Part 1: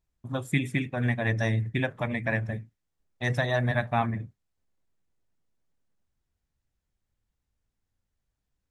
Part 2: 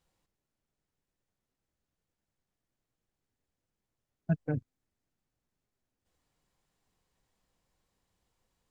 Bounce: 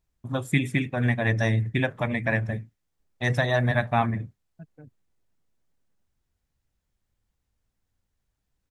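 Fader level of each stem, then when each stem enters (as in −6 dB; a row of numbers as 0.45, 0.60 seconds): +3.0, −16.5 decibels; 0.00, 0.30 seconds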